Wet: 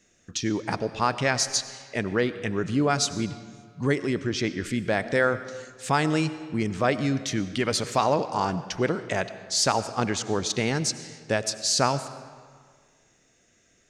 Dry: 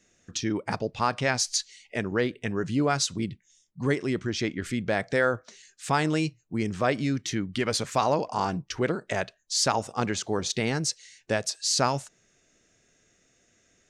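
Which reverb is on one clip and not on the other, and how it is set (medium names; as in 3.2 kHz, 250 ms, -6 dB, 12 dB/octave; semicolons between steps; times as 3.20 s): algorithmic reverb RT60 1.8 s, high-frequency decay 0.75×, pre-delay 55 ms, DRR 13 dB; trim +1.5 dB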